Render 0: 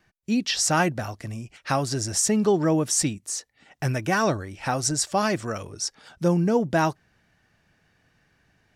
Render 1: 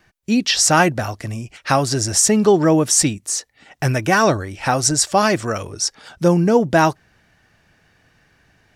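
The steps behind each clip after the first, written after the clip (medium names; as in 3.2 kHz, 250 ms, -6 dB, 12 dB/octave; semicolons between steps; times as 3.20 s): peaking EQ 180 Hz -2.5 dB 1.2 oct; trim +8 dB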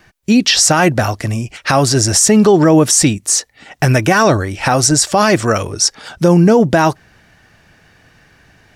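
peak limiter -10.5 dBFS, peak gain reduction 9 dB; trim +8.5 dB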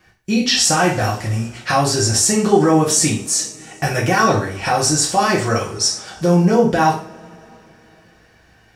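two-slope reverb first 0.4 s, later 3.5 s, from -28 dB, DRR -4.5 dB; trim -9.5 dB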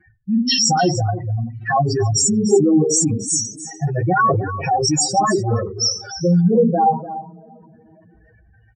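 spectral contrast enhancement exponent 4; delay 296 ms -13.5 dB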